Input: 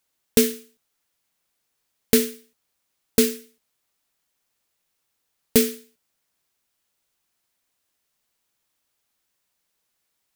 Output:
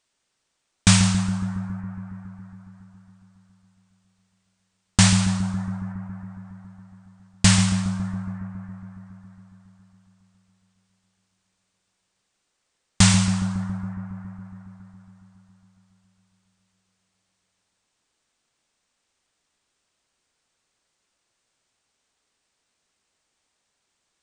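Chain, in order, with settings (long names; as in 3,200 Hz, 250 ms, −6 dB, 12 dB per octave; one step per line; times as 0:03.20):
spring reverb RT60 1.7 s, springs 59 ms, chirp 75 ms, DRR 5 dB
wrong playback speed 78 rpm record played at 33 rpm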